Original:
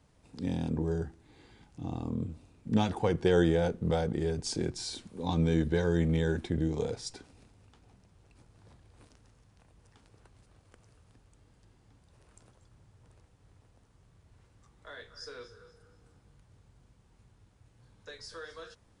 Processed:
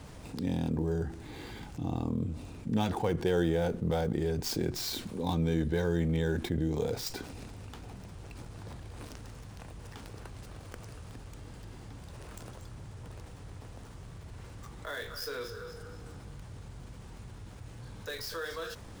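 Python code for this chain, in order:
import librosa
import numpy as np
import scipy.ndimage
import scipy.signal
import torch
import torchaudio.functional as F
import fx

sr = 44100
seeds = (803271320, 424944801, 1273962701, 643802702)

y = fx.dead_time(x, sr, dead_ms=0.053)
y = fx.env_flatten(y, sr, amount_pct=50)
y = y * 10.0 ** (-4.0 / 20.0)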